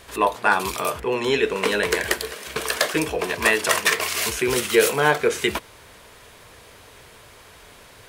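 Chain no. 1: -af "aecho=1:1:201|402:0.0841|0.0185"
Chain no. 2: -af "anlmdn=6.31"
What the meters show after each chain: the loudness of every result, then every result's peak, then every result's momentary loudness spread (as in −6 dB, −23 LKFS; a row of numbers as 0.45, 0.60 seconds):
−21.5, −21.5 LKFS; −3.0, −3.0 dBFS; 7, 7 LU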